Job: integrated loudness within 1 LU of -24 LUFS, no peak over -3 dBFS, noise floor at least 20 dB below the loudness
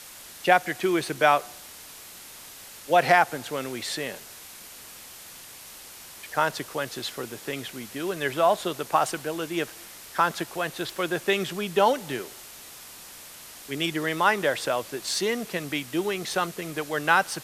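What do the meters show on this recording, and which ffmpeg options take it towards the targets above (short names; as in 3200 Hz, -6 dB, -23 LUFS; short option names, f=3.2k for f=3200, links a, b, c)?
noise floor -45 dBFS; noise floor target -46 dBFS; loudness -26.0 LUFS; peak -3.5 dBFS; loudness target -24.0 LUFS
-> -af "afftdn=nr=6:nf=-45"
-af "volume=2dB,alimiter=limit=-3dB:level=0:latency=1"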